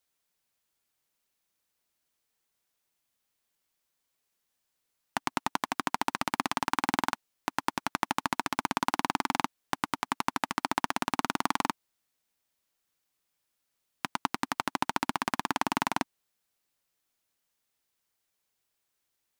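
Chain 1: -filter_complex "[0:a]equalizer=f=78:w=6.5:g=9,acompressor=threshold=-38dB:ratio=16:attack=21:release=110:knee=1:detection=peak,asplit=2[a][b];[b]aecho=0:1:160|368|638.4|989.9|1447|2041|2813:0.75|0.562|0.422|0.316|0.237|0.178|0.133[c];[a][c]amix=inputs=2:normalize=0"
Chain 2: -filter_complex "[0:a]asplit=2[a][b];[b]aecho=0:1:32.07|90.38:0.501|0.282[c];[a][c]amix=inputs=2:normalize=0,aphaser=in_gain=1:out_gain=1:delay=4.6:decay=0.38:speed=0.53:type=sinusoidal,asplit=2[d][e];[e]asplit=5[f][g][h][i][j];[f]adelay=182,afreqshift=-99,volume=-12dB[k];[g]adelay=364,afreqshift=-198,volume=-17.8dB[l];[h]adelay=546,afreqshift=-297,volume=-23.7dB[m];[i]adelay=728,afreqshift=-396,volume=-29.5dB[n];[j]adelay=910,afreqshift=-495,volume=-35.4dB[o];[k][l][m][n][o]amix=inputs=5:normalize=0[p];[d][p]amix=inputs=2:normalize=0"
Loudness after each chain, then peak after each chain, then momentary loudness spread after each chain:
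-31.5, -29.5 LUFS; -5.0, -4.5 dBFS; 16, 7 LU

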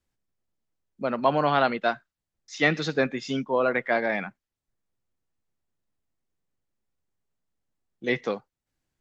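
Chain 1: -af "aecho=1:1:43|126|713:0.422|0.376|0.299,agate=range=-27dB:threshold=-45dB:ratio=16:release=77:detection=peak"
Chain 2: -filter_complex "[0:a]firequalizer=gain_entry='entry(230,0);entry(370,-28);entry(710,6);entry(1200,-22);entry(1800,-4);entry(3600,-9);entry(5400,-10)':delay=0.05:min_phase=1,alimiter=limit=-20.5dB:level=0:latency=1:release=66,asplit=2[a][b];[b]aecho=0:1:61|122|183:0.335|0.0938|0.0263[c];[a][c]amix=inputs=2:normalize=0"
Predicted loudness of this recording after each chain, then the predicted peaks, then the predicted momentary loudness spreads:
-25.5, -32.0 LUFS; -7.5, -18.0 dBFS; 14, 10 LU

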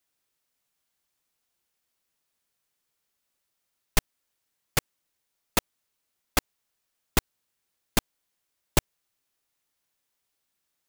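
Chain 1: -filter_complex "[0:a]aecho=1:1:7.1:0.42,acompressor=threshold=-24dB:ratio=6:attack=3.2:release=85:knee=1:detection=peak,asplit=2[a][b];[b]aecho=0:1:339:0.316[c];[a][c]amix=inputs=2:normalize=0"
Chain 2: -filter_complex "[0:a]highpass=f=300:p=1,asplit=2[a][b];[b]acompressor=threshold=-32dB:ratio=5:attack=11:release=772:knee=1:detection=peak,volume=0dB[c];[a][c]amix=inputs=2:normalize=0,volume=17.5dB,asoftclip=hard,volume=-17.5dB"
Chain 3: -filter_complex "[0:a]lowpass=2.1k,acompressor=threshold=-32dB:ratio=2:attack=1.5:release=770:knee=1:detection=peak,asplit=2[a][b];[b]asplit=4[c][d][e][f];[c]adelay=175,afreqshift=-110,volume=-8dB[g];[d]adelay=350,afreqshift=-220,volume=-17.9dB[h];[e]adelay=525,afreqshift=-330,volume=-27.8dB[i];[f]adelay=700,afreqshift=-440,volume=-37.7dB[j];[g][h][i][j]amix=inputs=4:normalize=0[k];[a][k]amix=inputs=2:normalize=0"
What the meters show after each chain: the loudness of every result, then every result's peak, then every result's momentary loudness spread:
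-39.5, -31.0, -43.5 LUFS; -9.5, -17.5, -17.5 dBFS; 11, 0, 18 LU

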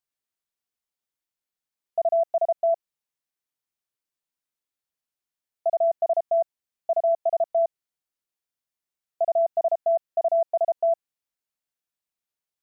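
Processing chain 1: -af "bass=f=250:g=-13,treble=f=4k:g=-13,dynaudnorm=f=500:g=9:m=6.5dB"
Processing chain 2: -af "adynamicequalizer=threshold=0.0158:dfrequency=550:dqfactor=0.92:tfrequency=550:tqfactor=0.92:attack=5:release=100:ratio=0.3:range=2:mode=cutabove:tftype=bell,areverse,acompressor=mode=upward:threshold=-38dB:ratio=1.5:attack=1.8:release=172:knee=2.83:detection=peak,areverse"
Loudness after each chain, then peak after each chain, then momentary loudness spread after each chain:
-19.5, -27.0 LUFS; -10.5, -17.0 dBFS; 8, 7 LU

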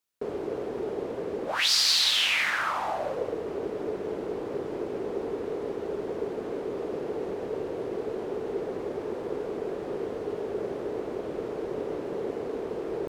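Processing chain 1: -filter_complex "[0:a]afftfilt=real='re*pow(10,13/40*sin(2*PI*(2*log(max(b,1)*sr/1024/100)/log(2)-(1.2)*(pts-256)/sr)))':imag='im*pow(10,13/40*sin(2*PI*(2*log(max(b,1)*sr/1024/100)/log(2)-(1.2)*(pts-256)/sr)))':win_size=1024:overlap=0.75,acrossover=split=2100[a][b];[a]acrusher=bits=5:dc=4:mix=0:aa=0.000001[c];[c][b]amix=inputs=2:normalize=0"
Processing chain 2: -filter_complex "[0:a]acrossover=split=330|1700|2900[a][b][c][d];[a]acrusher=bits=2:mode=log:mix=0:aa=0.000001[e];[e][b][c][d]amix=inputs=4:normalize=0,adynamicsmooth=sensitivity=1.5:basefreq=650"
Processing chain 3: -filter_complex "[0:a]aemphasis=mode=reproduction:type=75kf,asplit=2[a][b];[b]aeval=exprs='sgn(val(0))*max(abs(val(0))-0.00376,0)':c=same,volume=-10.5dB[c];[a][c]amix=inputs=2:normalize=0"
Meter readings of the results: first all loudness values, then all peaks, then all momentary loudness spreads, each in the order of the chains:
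-28.5, -33.0, -30.0 LUFS; -8.0, -12.5, -15.0 dBFS; 14, 7, 7 LU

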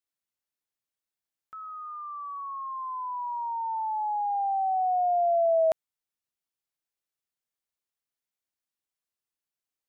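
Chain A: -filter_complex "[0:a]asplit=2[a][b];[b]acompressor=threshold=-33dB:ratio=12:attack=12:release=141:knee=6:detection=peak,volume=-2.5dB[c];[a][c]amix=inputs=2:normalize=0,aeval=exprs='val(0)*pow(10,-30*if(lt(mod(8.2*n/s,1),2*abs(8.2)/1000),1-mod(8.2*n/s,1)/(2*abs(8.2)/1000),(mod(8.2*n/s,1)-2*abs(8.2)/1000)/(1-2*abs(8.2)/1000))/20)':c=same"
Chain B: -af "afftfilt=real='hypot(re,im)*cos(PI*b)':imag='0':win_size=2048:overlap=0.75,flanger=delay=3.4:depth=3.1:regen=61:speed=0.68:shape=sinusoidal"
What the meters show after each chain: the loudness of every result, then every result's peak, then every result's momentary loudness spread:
-34.5, -37.0 LUFS; -17.5, -21.5 dBFS; 12, 17 LU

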